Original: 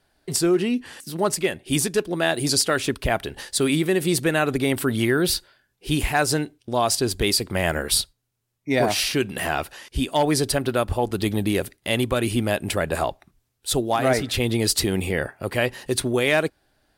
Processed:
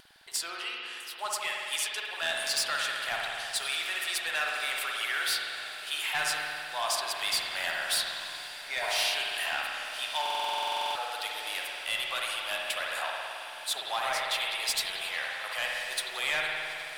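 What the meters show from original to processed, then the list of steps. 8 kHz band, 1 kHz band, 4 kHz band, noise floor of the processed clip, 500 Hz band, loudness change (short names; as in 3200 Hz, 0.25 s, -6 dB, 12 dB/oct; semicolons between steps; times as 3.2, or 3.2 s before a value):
-8.5 dB, -6.0 dB, -2.5 dB, -42 dBFS, -17.5 dB, -8.0 dB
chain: HPF 830 Hz 24 dB/oct; bell 3300 Hz +6 dB 1 oct; upward compressor, threshold -41 dBFS; soft clip -16 dBFS, distortion -13 dB; vibrato 2 Hz 23 cents; on a send: diffused feedback echo 1.158 s, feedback 69%, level -13.5 dB; on the sum: spring tank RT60 2.4 s, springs 53 ms, chirp 40 ms, DRR -1.5 dB; stuck buffer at 10.21, samples 2048, times 15; gain -7 dB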